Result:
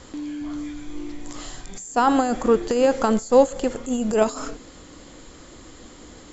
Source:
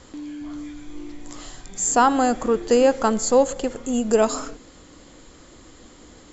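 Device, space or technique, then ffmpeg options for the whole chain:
de-esser from a sidechain: -filter_complex "[0:a]asplit=2[link_01][link_02];[link_02]highpass=4900,apad=whole_len=278937[link_03];[link_01][link_03]sidechaincompress=threshold=-39dB:ratio=12:attack=3.3:release=43,volume=3dB"

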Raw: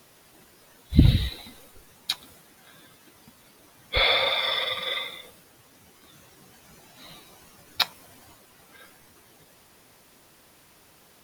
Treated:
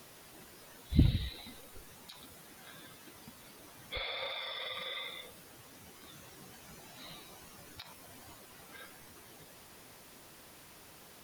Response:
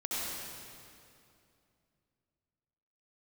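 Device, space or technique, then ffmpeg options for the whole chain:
de-esser from a sidechain: -filter_complex "[0:a]asplit=2[link_01][link_02];[link_02]highpass=frequency=5300:width=0.5412,highpass=frequency=5300:width=1.3066,apad=whole_len=495296[link_03];[link_01][link_03]sidechaincompress=threshold=-56dB:ratio=16:attack=4.5:release=30,volume=1.5dB"

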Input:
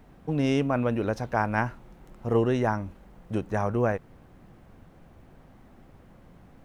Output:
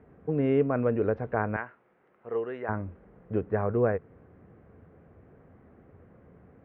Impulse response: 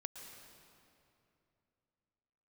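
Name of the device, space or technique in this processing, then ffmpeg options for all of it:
bass cabinet: -filter_complex "[0:a]asettb=1/sr,asplit=3[link_01][link_02][link_03];[link_01]atrim=end=1.564[link_04];[link_02]atrim=start=1.56:end=2.69,asetpts=PTS-STARTPTS,afade=type=in:duration=0.004:curve=qsin,afade=type=out:start_time=1.126:duration=0.004:curve=qsin,highpass=frequency=1400:poles=1[link_05];[link_03]atrim=start=2.686[link_06];[link_04][link_05]acrossfade=duration=0.004:curve1=hsin:curve2=qsin[link_07];[link_07][link_06]acrossfade=duration=0.004:curve1=qsin:curve2=hsin,highpass=72,equalizer=frequency=86:width_type=q:width=4:gain=7,equalizer=frequency=440:width_type=q:width=4:gain=9,equalizer=frequency=880:width_type=q:width=4:gain=-5,lowpass=frequency=2100:width=0.5412,lowpass=frequency=2100:width=1.3066,volume=-2.5dB"

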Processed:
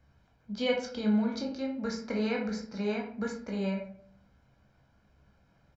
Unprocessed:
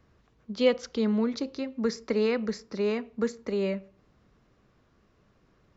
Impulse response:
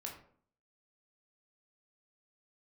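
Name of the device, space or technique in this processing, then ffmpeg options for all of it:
microphone above a desk: -filter_complex "[0:a]aecho=1:1:1.3:0.57[link_01];[1:a]atrim=start_sample=2205[link_02];[link_01][link_02]afir=irnorm=-1:irlink=0"

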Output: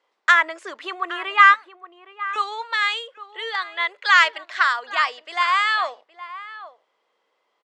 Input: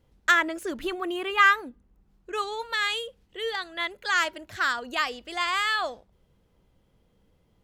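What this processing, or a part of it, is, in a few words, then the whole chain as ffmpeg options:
phone speaker on a table: -filter_complex "[0:a]highpass=frequency=470:width=0.5412,highpass=frequency=470:width=1.3066,equalizer=frequency=500:width_type=q:width=4:gain=-4,equalizer=frequency=1100:width_type=q:width=4:gain=8,equalizer=frequency=2000:width_type=q:width=4:gain=5,equalizer=frequency=6400:width_type=q:width=4:gain=-4,lowpass=frequency=7300:width=0.5412,lowpass=frequency=7300:width=1.3066,asettb=1/sr,asplit=3[link_01][link_02][link_03];[link_01]atrim=end=1.544[link_04];[link_02]atrim=start=1.54:end=2.36,asetpts=PTS-STARTPTS,afade=type=in:duration=0.004:curve=qsin,afade=type=out:start_time=0.816:duration=0.004:curve=qsin,highpass=1500[link_05];[link_03]atrim=start=2.356[link_06];[link_04][link_05]acrossfade=duration=0.004:curve1=hsin:curve2=qsin[link_07];[link_07][link_06]acrossfade=duration=0.004:curve1=qsin:curve2=hsin,asettb=1/sr,asplit=3[link_08][link_09][link_10];[link_08]atrim=end=3.944[link_11];[link_09]atrim=start=3.94:end=4.63,asetpts=PTS-STARTPTS,afade=type=in:duration=0.004:curve=qsin,afade=type=out:start_time=0.686:duration=0.004:curve=qsin,equalizer=frequency=2900:width_type=o:width=2.2:gain=6.5[link_12];[link_10]atrim=start=4.626[link_13];[link_11][link_12]acrossfade=duration=0.004:curve1=hsin:curve2=qsin[link_14];[link_14][link_13]acrossfade=duration=0.004:curve1=qsin:curve2=hsin,asplit=2[link_15][link_16];[link_16]adelay=816.3,volume=-14dB,highshelf=frequency=4000:gain=-18.4[link_17];[link_15][link_17]amix=inputs=2:normalize=0,volume=2.5dB"

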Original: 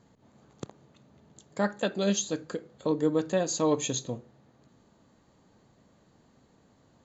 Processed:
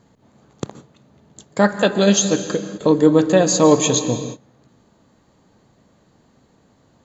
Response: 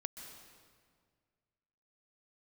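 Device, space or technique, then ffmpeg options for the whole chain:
keyed gated reverb: -filter_complex "[0:a]asplit=3[link_01][link_02][link_03];[1:a]atrim=start_sample=2205[link_04];[link_02][link_04]afir=irnorm=-1:irlink=0[link_05];[link_03]apad=whole_len=310821[link_06];[link_05][link_06]sidechaingate=range=-27dB:threshold=-53dB:ratio=16:detection=peak,volume=5dB[link_07];[link_01][link_07]amix=inputs=2:normalize=0,volume=5.5dB"

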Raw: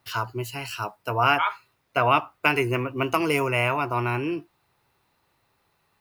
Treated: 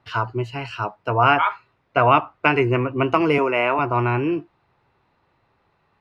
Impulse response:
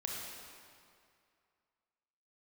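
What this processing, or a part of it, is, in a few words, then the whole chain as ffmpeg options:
phone in a pocket: -filter_complex "[0:a]lowpass=3900,highshelf=frequency=2500:gain=-8.5,asettb=1/sr,asplit=3[link_01][link_02][link_03];[link_01]atrim=end=3.384[link_04];[link_02]atrim=start=3.38:end=3.79,asetpts=PTS-STARTPTS,afade=type=in:duration=0.004:curve=qsin,afade=type=out:start_time=0.406:duration=0.004:curve=qsin,highpass=frequency=210:width=0.5412,highpass=frequency=210:width=1.3066[link_05];[link_03]atrim=start=3.786[link_06];[link_04][link_05]acrossfade=duration=0.004:curve1=hsin:curve2=qsin[link_07];[link_07][link_06]acrossfade=duration=0.004:curve1=qsin:curve2=hsin,volume=6dB"

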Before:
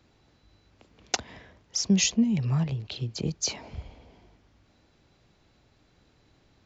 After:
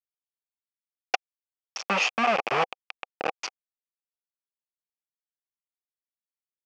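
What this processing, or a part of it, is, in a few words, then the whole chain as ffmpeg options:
hand-held game console: -af "acrusher=bits=3:mix=0:aa=0.000001,highpass=450,equalizer=frequency=510:width_type=q:width=4:gain=4,equalizer=frequency=770:width_type=q:width=4:gain=9,equalizer=frequency=1200:width_type=q:width=4:gain=7,equalizer=frequency=2500:width_type=q:width=4:gain=10,equalizer=frequency=3900:width_type=q:width=4:gain=-9,lowpass=frequency=4700:width=0.5412,lowpass=frequency=4700:width=1.3066"

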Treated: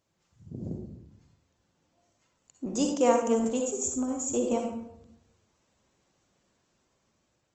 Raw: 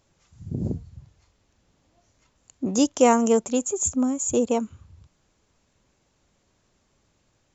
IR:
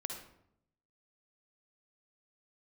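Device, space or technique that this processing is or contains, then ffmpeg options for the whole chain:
far-field microphone of a smart speaker: -filter_complex "[1:a]atrim=start_sample=2205[link_01];[0:a][link_01]afir=irnorm=-1:irlink=0,highpass=frequency=120:poles=1,dynaudnorm=framelen=670:gausssize=5:maxgain=4dB,volume=-6dB" -ar 48000 -c:a libopus -b:a 20k

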